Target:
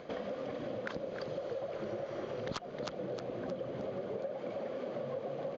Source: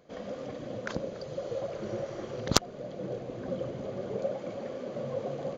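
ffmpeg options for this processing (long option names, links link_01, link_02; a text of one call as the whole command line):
ffmpeg -i in.wav -filter_complex "[0:a]lowpass=3800,lowshelf=frequency=200:gain=-8,areverse,acompressor=mode=upward:threshold=-37dB:ratio=2.5,areverse,asplit=5[link_01][link_02][link_03][link_04][link_05];[link_02]adelay=311,afreqshift=37,volume=-12dB[link_06];[link_03]adelay=622,afreqshift=74,volume=-21.1dB[link_07];[link_04]adelay=933,afreqshift=111,volume=-30.2dB[link_08];[link_05]adelay=1244,afreqshift=148,volume=-39.4dB[link_09];[link_01][link_06][link_07][link_08][link_09]amix=inputs=5:normalize=0,aresample=16000,asoftclip=type=tanh:threshold=-21dB,aresample=44100,acompressor=threshold=-47dB:ratio=6,volume=10dB" out.wav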